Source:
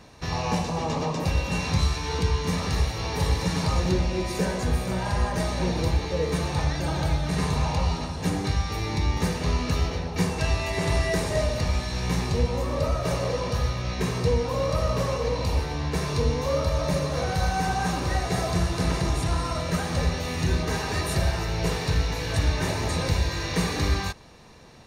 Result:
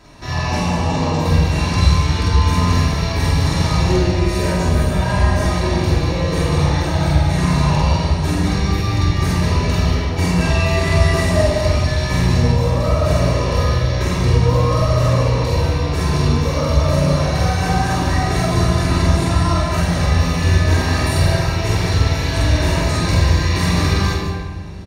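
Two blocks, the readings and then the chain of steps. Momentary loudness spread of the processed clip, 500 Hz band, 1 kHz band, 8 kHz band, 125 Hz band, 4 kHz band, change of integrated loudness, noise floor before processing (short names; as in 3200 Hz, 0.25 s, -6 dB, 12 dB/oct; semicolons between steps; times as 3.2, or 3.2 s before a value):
3 LU, +7.0 dB, +8.0 dB, +6.0 dB, +11.0 dB, +7.5 dB, +9.5 dB, -32 dBFS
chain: flange 0.33 Hz, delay 6.8 ms, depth 7.1 ms, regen -63%; loudspeakers at several distances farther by 16 m -1 dB, 67 m -8 dB; shoebox room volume 1900 m³, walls mixed, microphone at 2.9 m; gain +4.5 dB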